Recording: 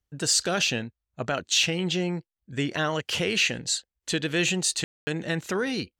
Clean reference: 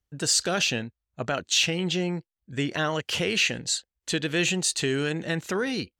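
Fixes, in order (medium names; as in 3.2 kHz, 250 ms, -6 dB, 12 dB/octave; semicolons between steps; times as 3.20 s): room tone fill 4.84–5.07 s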